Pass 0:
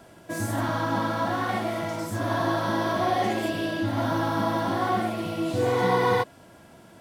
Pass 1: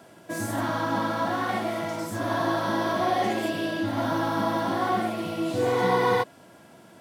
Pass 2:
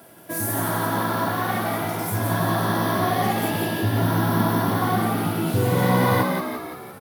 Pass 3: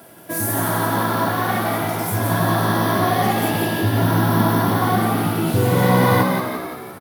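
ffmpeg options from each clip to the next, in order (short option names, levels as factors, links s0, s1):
-af "highpass=130"
-filter_complex "[0:a]asubboost=boost=7.5:cutoff=140,asplit=8[s0][s1][s2][s3][s4][s5][s6][s7];[s1]adelay=172,afreqshift=64,volume=0.596[s8];[s2]adelay=344,afreqshift=128,volume=0.32[s9];[s3]adelay=516,afreqshift=192,volume=0.174[s10];[s4]adelay=688,afreqshift=256,volume=0.0933[s11];[s5]adelay=860,afreqshift=320,volume=0.0507[s12];[s6]adelay=1032,afreqshift=384,volume=0.0272[s13];[s7]adelay=1204,afreqshift=448,volume=0.0148[s14];[s0][s8][s9][s10][s11][s12][s13][s14]amix=inputs=8:normalize=0,aexciter=amount=7.8:drive=2.3:freq=10000,volume=1.19"
-af "aecho=1:1:261:0.188,volume=1.5"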